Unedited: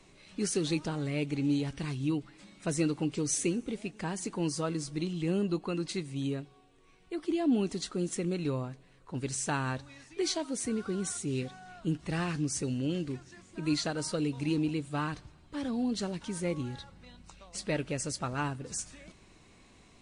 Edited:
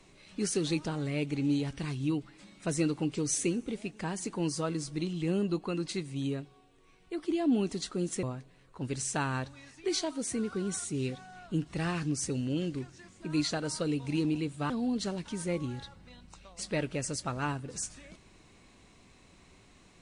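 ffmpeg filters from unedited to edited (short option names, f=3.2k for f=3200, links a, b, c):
-filter_complex "[0:a]asplit=3[a][b][c];[a]atrim=end=8.232[d];[b]atrim=start=8.558:end=15.032[e];[c]atrim=start=15.658[f];[d][e]acrossfade=d=0.004:c1=hsin:c2=hsin[g];[g][f]acrossfade=d=0.004:c1=hsin:c2=hsin"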